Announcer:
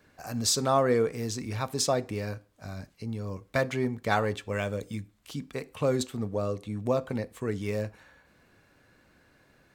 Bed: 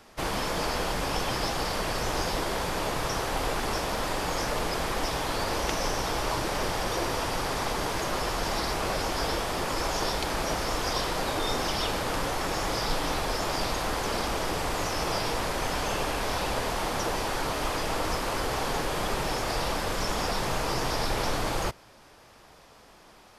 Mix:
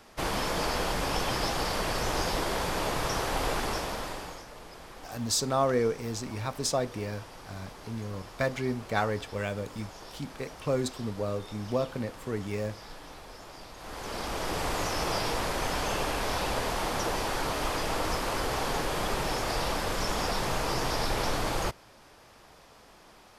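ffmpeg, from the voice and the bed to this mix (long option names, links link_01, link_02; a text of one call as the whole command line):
ffmpeg -i stem1.wav -i stem2.wav -filter_complex "[0:a]adelay=4850,volume=-2dB[link_01];[1:a]volume=16dB,afade=type=out:start_time=3.55:duration=0.89:silence=0.141254,afade=type=in:start_time=13.76:duration=0.89:silence=0.149624[link_02];[link_01][link_02]amix=inputs=2:normalize=0" out.wav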